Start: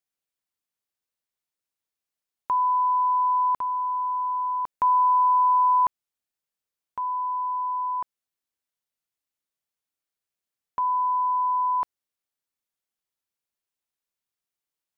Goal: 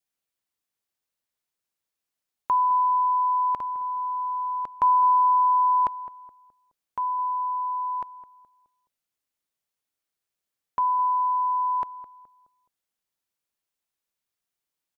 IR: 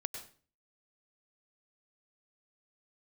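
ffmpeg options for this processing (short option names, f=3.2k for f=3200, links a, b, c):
-filter_complex "[0:a]adynamicequalizer=threshold=0.02:dfrequency=1100:dqfactor=2.4:tfrequency=1100:tqfactor=2.4:attack=5:release=100:ratio=0.375:range=3:mode=cutabove:tftype=bell,asplit=2[a][b];[b]adelay=211,lowpass=f=1.2k:p=1,volume=-14dB,asplit=2[c][d];[d]adelay=211,lowpass=f=1.2k:p=1,volume=0.42,asplit=2[e][f];[f]adelay=211,lowpass=f=1.2k:p=1,volume=0.42,asplit=2[g][h];[h]adelay=211,lowpass=f=1.2k:p=1,volume=0.42[i];[a][c][e][g][i]amix=inputs=5:normalize=0,volume=2dB"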